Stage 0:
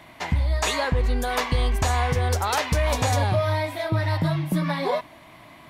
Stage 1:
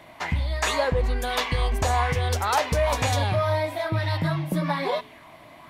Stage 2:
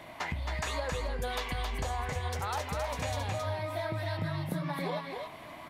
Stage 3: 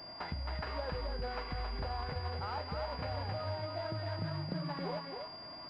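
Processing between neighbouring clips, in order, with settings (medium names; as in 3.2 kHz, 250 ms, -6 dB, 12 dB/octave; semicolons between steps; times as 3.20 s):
de-hum 61.61 Hz, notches 7; sweeping bell 1.1 Hz 490–3600 Hz +7 dB; trim -2 dB
compression 6:1, threshold -33 dBFS, peak gain reduction 14.5 dB; on a send: delay 269 ms -4.5 dB
sorted samples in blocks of 8 samples; class-D stage that switches slowly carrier 4.8 kHz; trim -4 dB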